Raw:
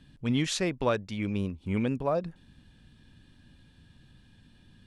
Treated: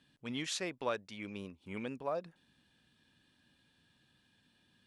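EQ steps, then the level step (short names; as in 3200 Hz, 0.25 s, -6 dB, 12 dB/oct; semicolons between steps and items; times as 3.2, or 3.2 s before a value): HPF 510 Hz 6 dB/oct; -6.0 dB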